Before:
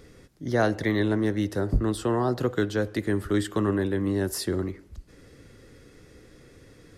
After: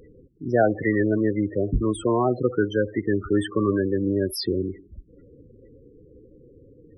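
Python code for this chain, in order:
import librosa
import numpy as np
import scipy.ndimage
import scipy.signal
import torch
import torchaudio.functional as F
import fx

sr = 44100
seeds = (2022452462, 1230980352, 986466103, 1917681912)

y = fx.spec_topn(x, sr, count=16)
y = fx.low_shelf(y, sr, hz=390.0, db=-9.0)
y = y * 10.0 ** (8.5 / 20.0)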